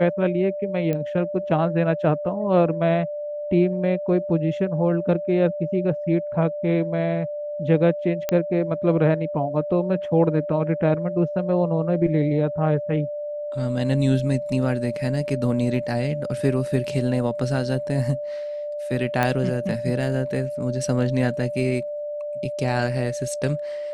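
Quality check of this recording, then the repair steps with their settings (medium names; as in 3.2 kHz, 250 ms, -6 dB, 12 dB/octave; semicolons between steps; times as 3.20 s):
whine 590 Hz -27 dBFS
0.93 s: pop -14 dBFS
8.29 s: pop -9 dBFS
19.23 s: pop -8 dBFS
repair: de-click; band-stop 590 Hz, Q 30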